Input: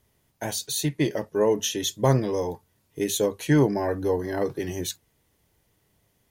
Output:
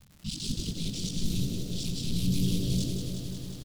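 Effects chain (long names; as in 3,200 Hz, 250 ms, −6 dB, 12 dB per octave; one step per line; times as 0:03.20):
reversed piece by piece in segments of 30 ms
wave folding −23 dBFS
parametric band 11,000 Hz +13 dB 1.4 octaves
decimation without filtering 6×
elliptic band-stop filter 110–2,100 Hz, stop band 40 dB
brickwall limiter −28.5 dBFS, peak gain reduction 19 dB
low-pass that shuts in the quiet parts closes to 780 Hz, open at −33.5 dBFS
surface crackle 100 per second −46 dBFS
wrong playback speed 45 rpm record played at 78 rpm
low-shelf EQ 290 Hz +10 dB
echo with shifted repeats 87 ms, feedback 49%, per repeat +100 Hz, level −10 dB
feedback echo at a low word length 180 ms, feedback 80%, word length 10 bits, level −7 dB
level +6 dB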